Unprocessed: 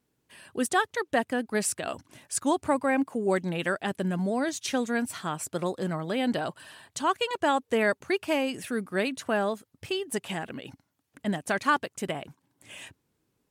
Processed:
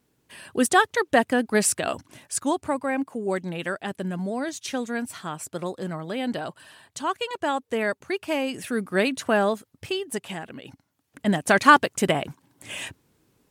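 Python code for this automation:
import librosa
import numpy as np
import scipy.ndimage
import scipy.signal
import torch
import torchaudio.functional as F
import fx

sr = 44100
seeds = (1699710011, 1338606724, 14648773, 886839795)

y = fx.gain(x, sr, db=fx.line((1.83, 6.5), (2.73, -1.0), (8.14, -1.0), (9.0, 5.5), (9.53, 5.5), (10.5, -2.0), (11.61, 10.0)))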